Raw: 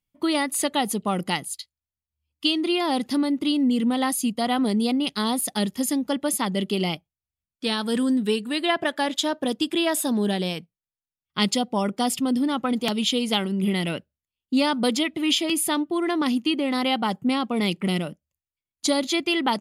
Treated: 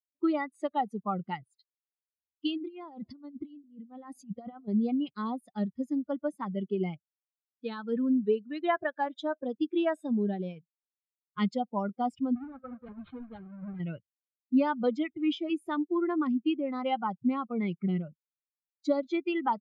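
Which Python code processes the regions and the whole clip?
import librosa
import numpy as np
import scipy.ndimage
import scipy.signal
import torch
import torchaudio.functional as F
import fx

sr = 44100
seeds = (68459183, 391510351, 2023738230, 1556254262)

y = fx.chain(x, sr, fx.over_compress(threshold_db=-28.0, ratio=-0.5),
    fx.echo_bbd(ms=209, stages=1024, feedback_pct=66, wet_db=-19), at=(2.57, 4.68))
y = fx.chain(y, sr, fx.halfwave_hold(),
    fx.comb_fb(f0_hz=260.0, decay_s=1.2, harmonics='all', damping=0.0, mix_pct=70),
    fx.resample_linear(factor=6), at=(12.35, 13.8))
y = fx.bin_expand(y, sr, power=2.0)
y = scipy.signal.sosfilt(scipy.signal.butter(2, 1500.0, 'lowpass', fs=sr, output='sos'), y)
y = fx.low_shelf(y, sr, hz=71.0, db=-11.0)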